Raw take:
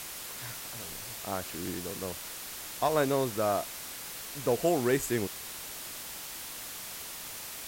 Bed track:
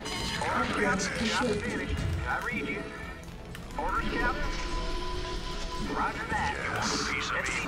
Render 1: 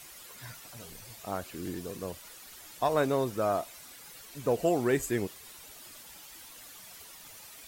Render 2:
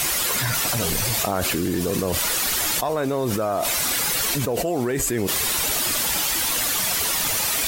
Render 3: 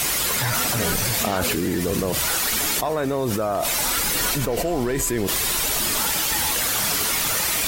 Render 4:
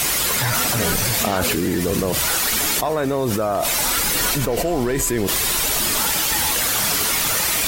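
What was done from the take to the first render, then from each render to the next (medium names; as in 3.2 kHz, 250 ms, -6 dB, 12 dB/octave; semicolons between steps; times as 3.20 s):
noise reduction 11 dB, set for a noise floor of -42 dBFS
level flattener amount 100%
add bed track -2.5 dB
trim +2.5 dB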